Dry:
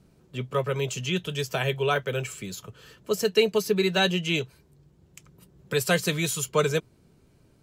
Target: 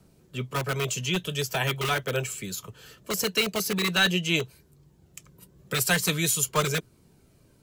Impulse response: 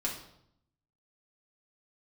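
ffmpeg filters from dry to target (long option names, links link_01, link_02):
-filter_complex "[0:a]highshelf=frequency=6600:gain=8.5,acrossover=split=290|610|2400[link_01][link_02][link_03][link_04];[link_02]aeval=exprs='(mod(22.4*val(0)+1,2)-1)/22.4':channel_layout=same[link_05];[link_03]aphaser=in_gain=1:out_gain=1:delay=2.1:decay=0.48:speed=0.46:type=triangular[link_06];[link_01][link_05][link_06][link_04]amix=inputs=4:normalize=0"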